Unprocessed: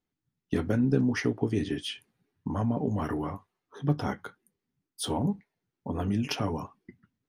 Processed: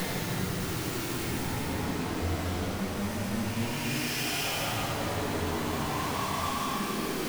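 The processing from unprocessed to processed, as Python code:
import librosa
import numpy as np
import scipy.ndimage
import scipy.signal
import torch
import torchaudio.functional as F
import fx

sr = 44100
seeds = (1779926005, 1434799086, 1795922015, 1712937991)

y = np.sign(x) * np.sqrt(np.mean(np.square(x)))
y = fx.paulstretch(y, sr, seeds[0], factor=5.8, window_s=0.25, from_s=5.58)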